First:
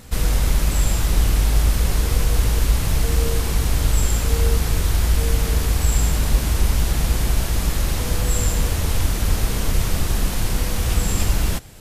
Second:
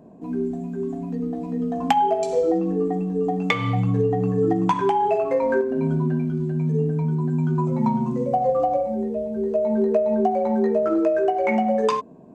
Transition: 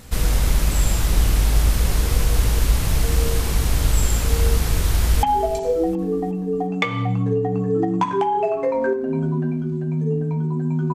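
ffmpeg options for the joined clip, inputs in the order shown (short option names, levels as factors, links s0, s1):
-filter_complex "[0:a]apad=whole_dur=10.94,atrim=end=10.94,atrim=end=5.232[s0];[1:a]atrim=start=1.908:end=7.62[s1];[s0][s1]acrossfade=d=0.004:c1=hsin:c2=hsin,asplit=2[s2][s3];[s3]afade=t=in:st=4.9:d=0.01,afade=t=out:st=5.23:d=0.01,aecho=0:1:360|720|1080|1440:0.199526|0.0897868|0.0404041|0.0181818[s4];[s2][s4]amix=inputs=2:normalize=0"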